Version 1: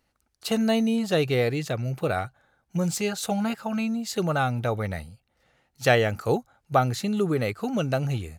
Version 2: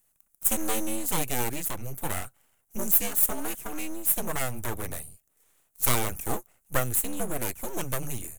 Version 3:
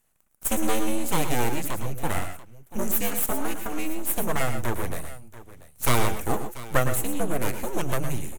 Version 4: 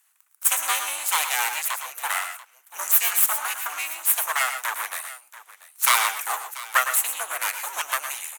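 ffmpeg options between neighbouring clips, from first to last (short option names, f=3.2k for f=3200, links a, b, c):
-af "afreqshift=-65,aeval=exprs='abs(val(0))':c=same,aexciter=amount=12.4:drive=2.9:freq=6.9k,volume=-4dB"
-filter_complex "[0:a]aemphasis=mode=reproduction:type=cd,asplit=2[a][b];[b]aecho=0:1:108|122|687:0.282|0.266|0.141[c];[a][c]amix=inputs=2:normalize=0,volume=4.5dB"
-af "highpass=f=1k:w=0.5412,highpass=f=1k:w=1.3066,volume=8dB"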